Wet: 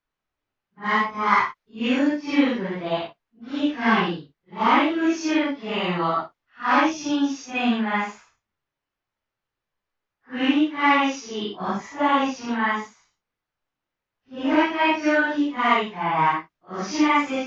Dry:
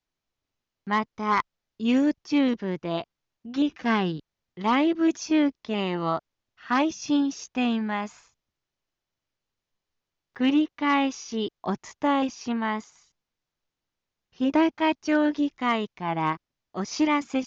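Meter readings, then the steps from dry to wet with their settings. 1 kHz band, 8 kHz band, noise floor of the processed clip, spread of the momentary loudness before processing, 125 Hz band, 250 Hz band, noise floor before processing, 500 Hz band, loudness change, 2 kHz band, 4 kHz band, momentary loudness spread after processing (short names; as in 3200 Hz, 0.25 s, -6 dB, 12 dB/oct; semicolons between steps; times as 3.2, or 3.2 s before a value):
+6.0 dB, n/a, under -85 dBFS, 9 LU, +1.0 dB, +1.0 dB, under -85 dBFS, +2.5 dB, +3.5 dB, +8.0 dB, +4.5 dB, 10 LU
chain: phase scrambler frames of 0.2 s; bell 1600 Hz +8 dB 2.5 oct; mismatched tape noise reduction decoder only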